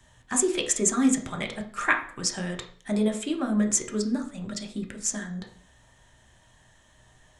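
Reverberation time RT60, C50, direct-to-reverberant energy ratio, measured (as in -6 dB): 0.50 s, 11.0 dB, 3.0 dB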